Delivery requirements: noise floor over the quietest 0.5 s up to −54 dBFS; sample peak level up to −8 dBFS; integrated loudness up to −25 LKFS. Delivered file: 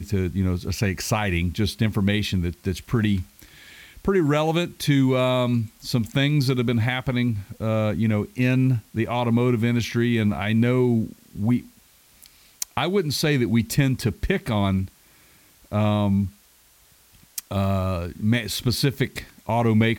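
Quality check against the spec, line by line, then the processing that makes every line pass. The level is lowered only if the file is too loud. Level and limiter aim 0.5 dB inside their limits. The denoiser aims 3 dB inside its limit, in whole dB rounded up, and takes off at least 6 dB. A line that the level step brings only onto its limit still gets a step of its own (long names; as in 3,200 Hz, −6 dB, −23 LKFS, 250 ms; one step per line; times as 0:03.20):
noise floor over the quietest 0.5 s −56 dBFS: in spec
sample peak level −6.5 dBFS: out of spec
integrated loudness −23.0 LKFS: out of spec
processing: level −2.5 dB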